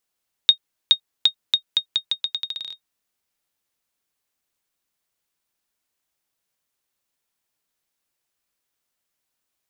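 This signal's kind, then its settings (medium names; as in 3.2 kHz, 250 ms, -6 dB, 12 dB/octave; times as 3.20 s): bouncing ball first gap 0.42 s, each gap 0.82, 3.72 kHz, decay 88 ms -1.5 dBFS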